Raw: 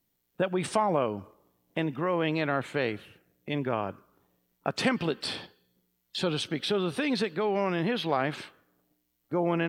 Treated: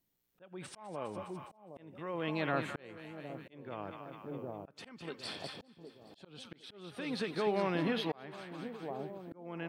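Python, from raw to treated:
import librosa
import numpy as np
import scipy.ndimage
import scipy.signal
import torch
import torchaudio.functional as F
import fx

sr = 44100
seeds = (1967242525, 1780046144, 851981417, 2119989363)

y = fx.echo_split(x, sr, split_hz=840.0, low_ms=762, high_ms=205, feedback_pct=52, wet_db=-8)
y = fx.auto_swell(y, sr, attack_ms=738.0)
y = y * librosa.db_to_amplitude(-5.0)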